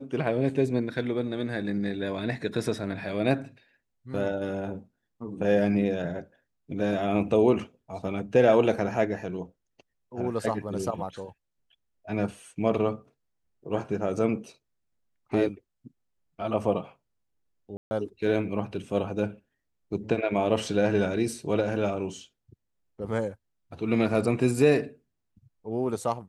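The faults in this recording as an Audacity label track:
17.770000	17.910000	drop-out 140 ms

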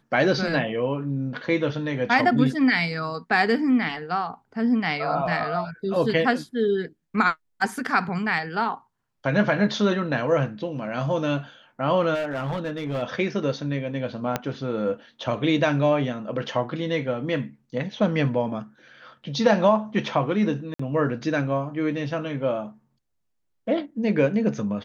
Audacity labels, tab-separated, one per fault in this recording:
12.140000	13.030000	clipping −23.5 dBFS
14.360000	14.360000	click −9 dBFS
20.740000	20.790000	drop-out 54 ms

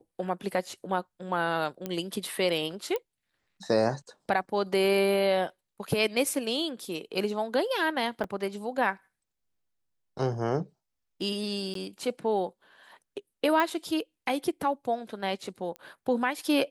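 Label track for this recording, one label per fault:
1.860000	1.860000	click −18 dBFS
2.960000	2.960000	click −18 dBFS
8.240000	8.240000	drop-out 2.3 ms
11.740000	11.750000	drop-out 13 ms
13.600000	13.600000	click −14 dBFS
15.760000	15.760000	click −26 dBFS

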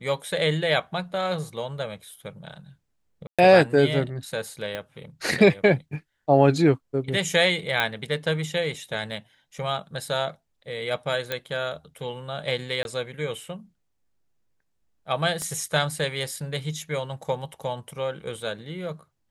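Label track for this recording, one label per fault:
3.270000	3.390000	drop-out 116 ms
4.750000	4.750000	click −17 dBFS
7.800000	7.800000	click −10 dBFS
11.320000	11.320000	click −12 dBFS
12.830000	12.850000	drop-out 21 ms
15.420000	15.420000	click −19 dBFS

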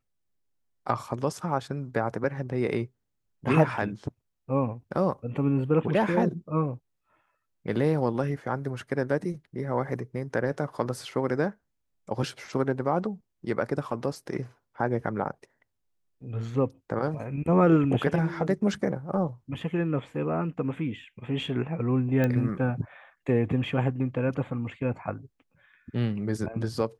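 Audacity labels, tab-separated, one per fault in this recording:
22.240000	22.240000	click −15 dBFS

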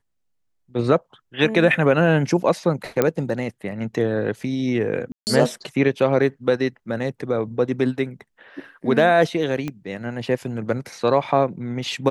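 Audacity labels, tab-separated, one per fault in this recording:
3.020000	3.020000	click −5 dBFS
5.120000	5.270000	drop-out 149 ms
9.680000	9.680000	click −15 dBFS

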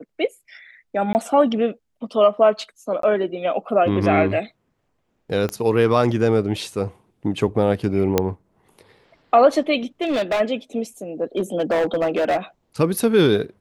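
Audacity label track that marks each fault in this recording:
1.130000	1.150000	drop-out 19 ms
3.020000	3.030000	drop-out 13 ms
5.490000	5.490000	click −13 dBFS
8.180000	8.180000	click −3 dBFS
10.010000	10.410000	clipping −17 dBFS
11.370000	12.380000	clipping −16 dBFS

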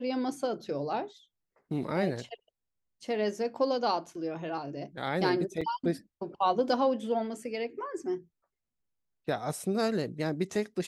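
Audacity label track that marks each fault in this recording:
5.610000	5.620000	drop-out 5.6 ms

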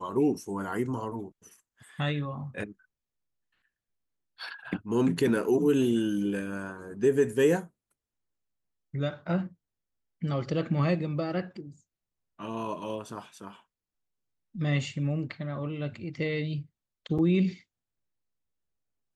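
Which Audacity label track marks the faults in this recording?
17.180000	17.190000	drop-out 6.5 ms

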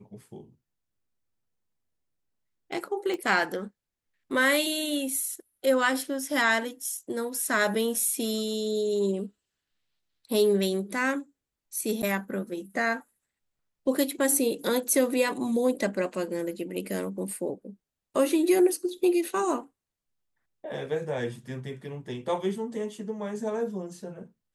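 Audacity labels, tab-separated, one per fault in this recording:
3.140000	3.140000	click −21 dBFS
12.020000	12.030000	drop-out 8.8 ms

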